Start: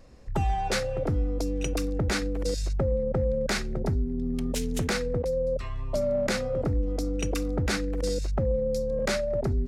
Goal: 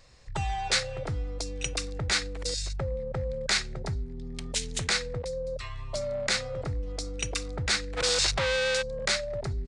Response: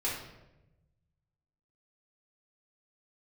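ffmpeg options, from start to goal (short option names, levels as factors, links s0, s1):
-filter_complex "[0:a]asplit=3[s0][s1][s2];[s0]afade=t=out:st=7.96:d=0.02[s3];[s1]asplit=2[s4][s5];[s5]highpass=f=720:p=1,volume=44.7,asoftclip=type=tanh:threshold=0.141[s6];[s4][s6]amix=inputs=2:normalize=0,lowpass=f=4000:p=1,volume=0.501,afade=t=in:st=7.96:d=0.02,afade=t=out:st=8.81:d=0.02[s7];[s2]afade=t=in:st=8.81:d=0.02[s8];[s3][s7][s8]amix=inputs=3:normalize=0,equalizer=f=125:t=o:w=1:g=5,equalizer=f=250:t=o:w=1:g=-9,equalizer=f=1000:t=o:w=1:g=4,equalizer=f=2000:t=o:w=1:g=7,equalizer=f=4000:t=o:w=1:g=11,equalizer=f=8000:t=o:w=1:g=10,aresample=22050,aresample=44100,volume=0.473"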